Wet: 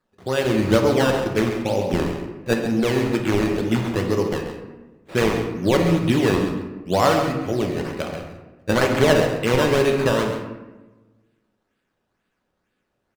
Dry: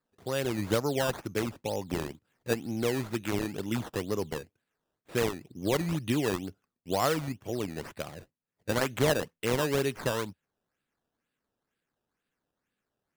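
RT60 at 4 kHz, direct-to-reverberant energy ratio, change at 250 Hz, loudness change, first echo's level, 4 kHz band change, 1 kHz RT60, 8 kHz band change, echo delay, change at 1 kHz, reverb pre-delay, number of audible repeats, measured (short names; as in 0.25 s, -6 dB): 0.65 s, 2.0 dB, +11.5 dB, +10.5 dB, -9.5 dB, +8.5 dB, 1.0 s, +5.0 dB, 0.135 s, +10.5 dB, 3 ms, 1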